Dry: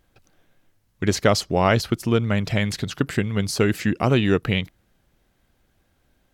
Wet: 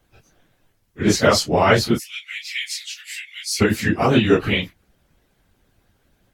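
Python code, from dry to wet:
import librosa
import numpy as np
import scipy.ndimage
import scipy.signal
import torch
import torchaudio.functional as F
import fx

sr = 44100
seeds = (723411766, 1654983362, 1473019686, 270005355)

y = fx.phase_scramble(x, sr, seeds[0], window_ms=100)
y = fx.ellip_highpass(y, sr, hz=2100.0, order=4, stop_db=70, at=(1.98, 3.6), fade=0.02)
y = fx.hpss(y, sr, part='percussive', gain_db=9)
y = y * 10.0 ** (-2.5 / 20.0)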